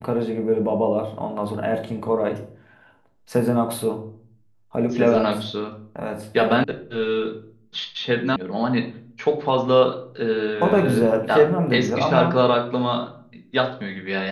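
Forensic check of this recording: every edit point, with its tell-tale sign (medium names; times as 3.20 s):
6.64 s: sound stops dead
8.36 s: sound stops dead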